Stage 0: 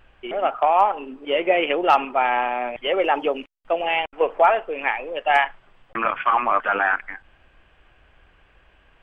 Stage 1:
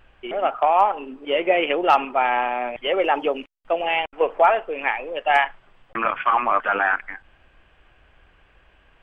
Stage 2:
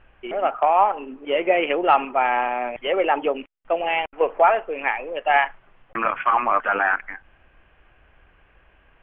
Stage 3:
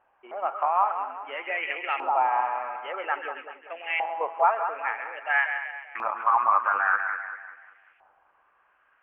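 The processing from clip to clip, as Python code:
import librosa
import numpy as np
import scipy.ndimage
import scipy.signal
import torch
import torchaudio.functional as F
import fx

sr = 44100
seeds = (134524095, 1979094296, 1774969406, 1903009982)

y1 = x
y2 = scipy.signal.sosfilt(scipy.signal.butter(4, 2900.0, 'lowpass', fs=sr, output='sos'), y1)
y3 = fx.echo_split(y2, sr, split_hz=1400.0, low_ms=193, high_ms=133, feedback_pct=52, wet_db=-7.0)
y3 = fx.filter_lfo_bandpass(y3, sr, shape='saw_up', hz=0.5, low_hz=840.0, high_hz=2200.0, q=2.8)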